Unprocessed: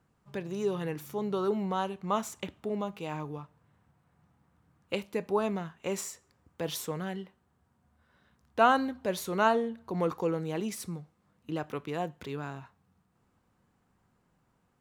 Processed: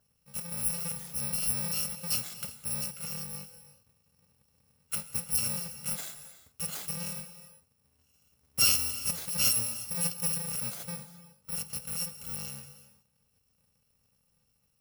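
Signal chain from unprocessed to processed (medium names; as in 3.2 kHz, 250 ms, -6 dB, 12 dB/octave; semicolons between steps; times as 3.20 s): bit-reversed sample order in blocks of 128 samples; on a send: reverberation, pre-delay 3 ms, DRR 11 dB; on the sum: trim -1.5 dB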